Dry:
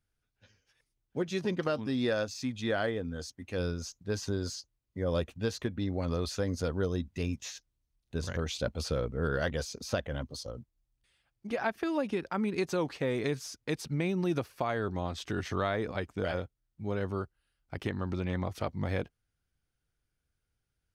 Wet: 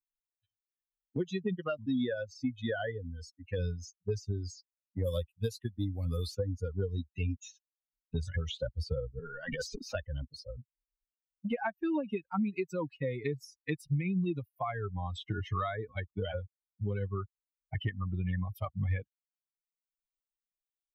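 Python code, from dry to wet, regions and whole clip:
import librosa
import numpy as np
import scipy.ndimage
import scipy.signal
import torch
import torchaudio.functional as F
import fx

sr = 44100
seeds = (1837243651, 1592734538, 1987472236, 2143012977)

y = fx.chain(x, sr, fx.cvsd(bps=64000),
    fx.high_shelf(hz=3300.0, db=6.5), at=(5.04, 6.35))
y = fx.chain(y, sr, fx.highpass(hz=160.0, slope=12),
    fx.over_compress(threshold_db=-35.0, ratio=-0.5),
    fx.transient(attack_db=1, sustain_db=12), at=(9.19, 9.95))
y = fx.bin_expand(y, sr, power=3.0)
y = fx.low_shelf(y, sr, hz=200.0, db=6.5)
y = fx.band_squash(y, sr, depth_pct=100)
y = y * 10.0 ** (3.5 / 20.0)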